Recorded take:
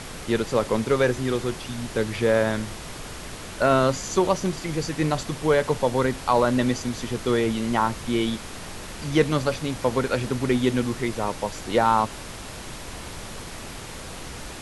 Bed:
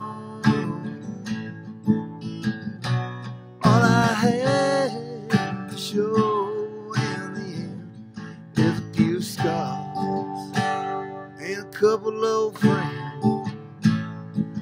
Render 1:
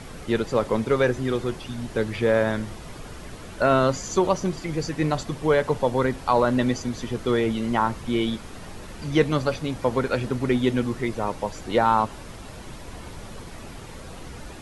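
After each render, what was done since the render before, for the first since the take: denoiser 8 dB, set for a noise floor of -38 dBFS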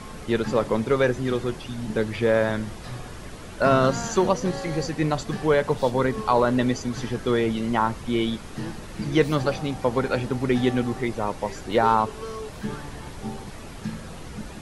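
add bed -13 dB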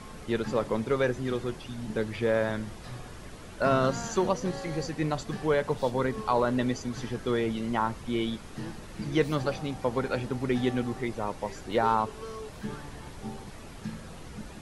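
gain -5.5 dB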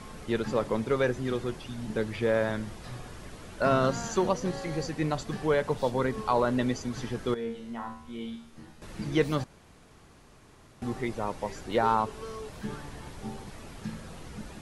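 7.34–8.82 resonator 77 Hz, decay 0.59 s, mix 90%; 9.44–10.82 room tone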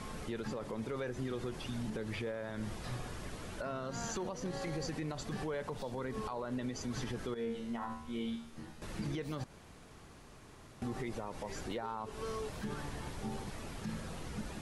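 compressor, threshold -30 dBFS, peak gain reduction 11 dB; limiter -30 dBFS, peak gain reduction 11.5 dB

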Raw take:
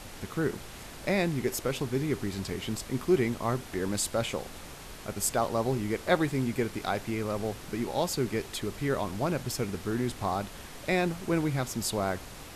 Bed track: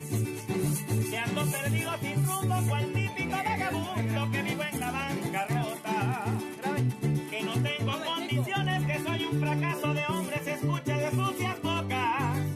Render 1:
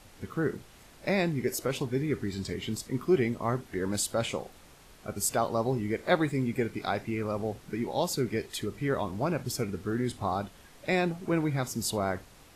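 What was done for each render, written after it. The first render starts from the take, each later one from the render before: noise print and reduce 10 dB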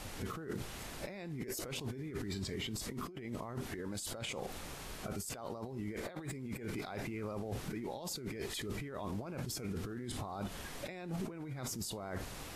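negative-ratio compressor -40 dBFS, ratio -1; limiter -31 dBFS, peak gain reduction 11 dB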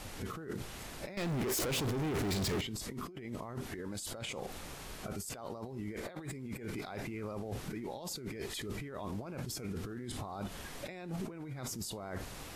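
1.17–2.61 sample leveller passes 5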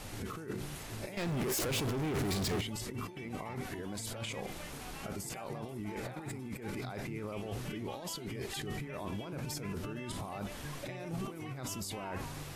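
add bed track -17.5 dB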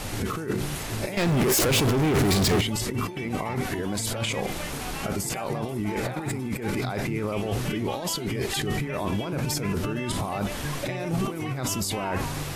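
gain +12 dB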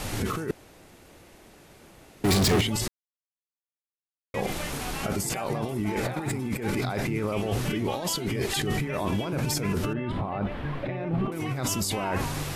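0.51–2.24 room tone; 2.88–4.34 mute; 9.93–11.32 air absorption 470 m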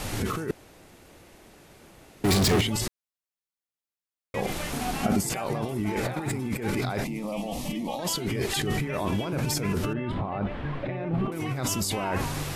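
4.72–5.19 small resonant body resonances 230/720 Hz, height 8 dB -> 12 dB; 7.04–7.99 fixed phaser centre 400 Hz, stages 6; 10.14–11.14 air absorption 54 m

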